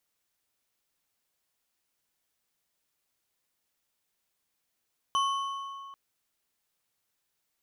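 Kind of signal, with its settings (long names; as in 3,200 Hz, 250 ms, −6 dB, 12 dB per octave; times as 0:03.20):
struck metal bar, length 0.79 s, lowest mode 1,100 Hz, modes 4, decay 2.27 s, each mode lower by 8 dB, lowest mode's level −23 dB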